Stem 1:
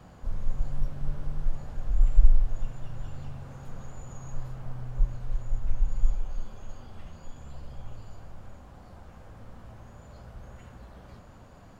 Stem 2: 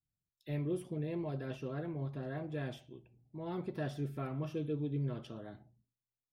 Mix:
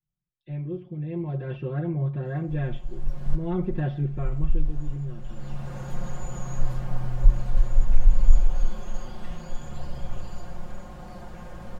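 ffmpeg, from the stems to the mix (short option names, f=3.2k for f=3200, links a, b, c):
-filter_complex "[0:a]bandreject=f=1.3k:w=19,adelay=2250,volume=-1dB[a];[1:a]lowpass=f=3.2k:w=0.5412,lowpass=f=3.2k:w=1.3066,lowshelf=f=240:g=10.5,volume=-4.5dB,afade=t=in:st=0.93:d=0.69:silence=0.375837,afade=t=out:st=3.94:d=0.76:silence=0.298538,asplit=2[b][c];[c]apad=whole_len=619473[d];[a][d]sidechaincompress=threshold=-53dB:ratio=16:attack=16:release=603[e];[e][b]amix=inputs=2:normalize=0,aecho=1:1:5.6:0.87,acontrast=88"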